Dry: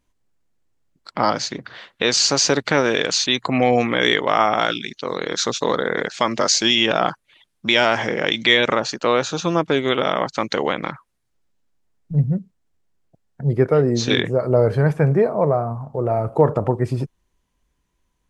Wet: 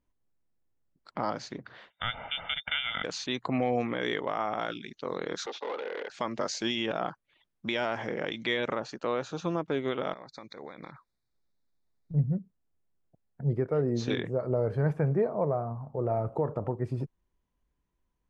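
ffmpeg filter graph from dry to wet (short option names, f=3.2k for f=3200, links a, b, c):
-filter_complex "[0:a]asettb=1/sr,asplit=3[a][b][c];[a]atrim=end=1.904[d];[b]atrim=start=1.9:end=3.04,asetpts=PTS-STARTPTS,afade=t=in:d=0.004:c=qsin,afade=t=out:st=1.136:d=0.004:c=qsin,lowpass=f=3.1k:t=q:w=0.5098,lowpass=f=3.1k:t=q:w=0.6013,lowpass=f=3.1k:t=q:w=0.9,lowpass=f=3.1k:t=q:w=2.563,afreqshift=-3700,aecho=1:1:1.4:0.77,atrim=end_sample=50274[e];[c]atrim=start=3.036[f];[d][e]acrossfade=d=0.004:c1=hsin:c2=qsin[g];[g][f]acrossfade=d=0.004:c1=qsin:c2=hsin,asettb=1/sr,asplit=3[h][i][j];[h]atrim=end=5.464[k];[i]atrim=start=5.46:end=6.09,asetpts=PTS-STARTPTS,afade=t=in:d=0.004:c=qsin,afade=t=out:st=0.626:d=0.004:c=qsin,asoftclip=type=hard:threshold=-23dB,highpass=f=350:w=0.5412,highpass=f=350:w=1.3066,equalizer=f=820:t=q:w=4:g=9,equalizer=f=2.1k:t=q:w=4:g=4,equalizer=f=3.2k:t=q:w=4:g=5,lowpass=f=5k:w=0.5412,lowpass=f=5k:w=1.3066[l];[j]atrim=start=6.086[m];[k][l]acrossfade=d=0.004:c1=hsin:c2=qsin[n];[n][m]acrossfade=d=0.004:c1=qsin:c2=hsin,asettb=1/sr,asplit=3[o][p][q];[o]atrim=end=10.134[r];[p]atrim=start=10.13:end=12.14,asetpts=PTS-STARTPTS,afade=t=in:d=0.004:c=qsin,afade=t=out:st=2.006:d=0.004:c=qsin,equalizer=f=4.1k:t=o:w=1.1:g=12.5,acompressor=threshold=-29dB:ratio=8:attack=3.2:release=140:knee=1:detection=peak,asuperstop=centerf=2900:order=20:qfactor=2.9[s];[q]atrim=start=12.136[t];[r][s]acrossfade=d=0.004:c1=hsin:c2=qsin[u];[u][t]acrossfade=d=0.004:c1=qsin:c2=hsin,highshelf=f=2.4k:g=-10.5,alimiter=limit=-9.5dB:level=0:latency=1:release=436,volume=-8dB"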